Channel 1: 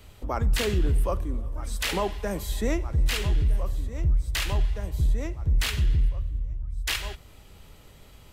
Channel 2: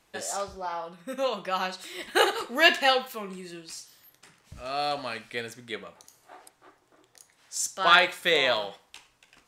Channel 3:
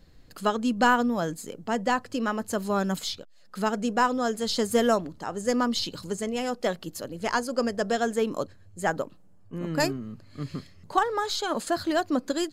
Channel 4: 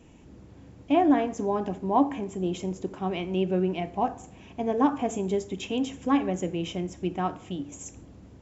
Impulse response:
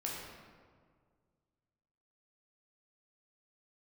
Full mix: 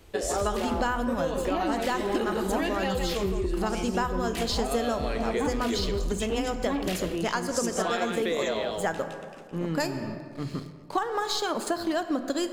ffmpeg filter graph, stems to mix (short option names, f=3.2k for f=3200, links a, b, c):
-filter_complex "[0:a]volume=-6dB,asplit=2[a][b];[b]volume=-13.5dB[c];[1:a]equalizer=f=370:t=o:w=1.2:g=14.5,acompressor=threshold=-22dB:ratio=6,volume=1.5dB,asplit=2[d][e];[e]volume=-5.5dB[f];[2:a]bandreject=f=50:t=h:w=6,bandreject=f=100:t=h:w=6,bandreject=f=150:t=h:w=6,bandreject=f=200:t=h:w=6,bandreject=f=250:t=h:w=6,aeval=exprs='sgn(val(0))*max(abs(val(0))-0.00398,0)':c=same,volume=1.5dB,asplit=2[g][h];[h]volume=-8.5dB[i];[3:a]asoftclip=type=tanh:threshold=-20dB,adelay=600,volume=1.5dB[j];[4:a]atrim=start_sample=2205[k];[i][k]afir=irnorm=-1:irlink=0[l];[c][f]amix=inputs=2:normalize=0,aecho=0:1:163:1[m];[a][d][g][j][l][m]amix=inputs=6:normalize=0,acompressor=threshold=-24dB:ratio=6"